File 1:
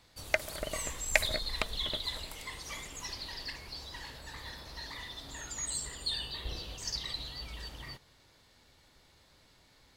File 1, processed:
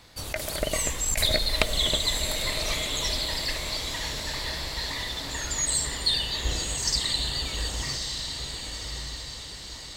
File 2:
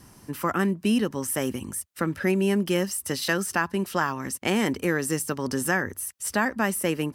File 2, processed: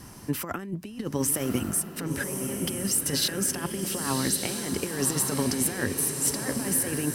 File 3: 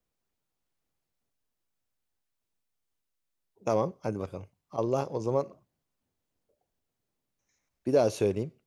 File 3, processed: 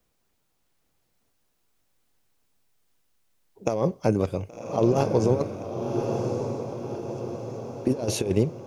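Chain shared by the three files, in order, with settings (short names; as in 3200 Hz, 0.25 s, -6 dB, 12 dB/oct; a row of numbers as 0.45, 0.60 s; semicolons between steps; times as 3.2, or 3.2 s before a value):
negative-ratio compressor -29 dBFS, ratio -0.5; dynamic EQ 1200 Hz, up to -5 dB, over -49 dBFS, Q 1.3; diffused feedback echo 1.119 s, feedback 54%, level -5 dB; match loudness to -27 LUFS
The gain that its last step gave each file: +9.5, +1.5, +8.0 dB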